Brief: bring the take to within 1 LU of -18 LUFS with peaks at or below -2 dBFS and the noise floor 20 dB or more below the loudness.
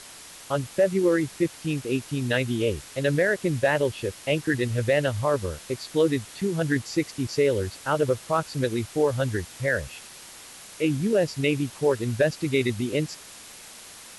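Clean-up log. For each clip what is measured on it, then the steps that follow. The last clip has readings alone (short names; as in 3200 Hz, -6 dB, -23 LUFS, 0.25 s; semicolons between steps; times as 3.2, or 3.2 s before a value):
noise floor -45 dBFS; noise floor target -46 dBFS; loudness -25.5 LUFS; peak -11.5 dBFS; loudness target -18.0 LUFS
-> denoiser 6 dB, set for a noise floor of -45 dBFS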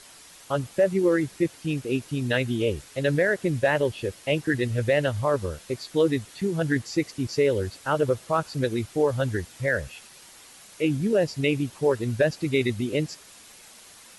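noise floor -49 dBFS; loudness -25.5 LUFS; peak -11.5 dBFS; loudness target -18.0 LUFS
-> gain +7.5 dB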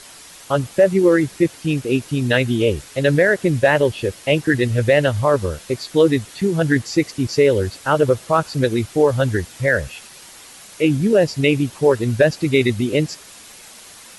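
loudness -18.0 LUFS; peak -4.0 dBFS; noise floor -42 dBFS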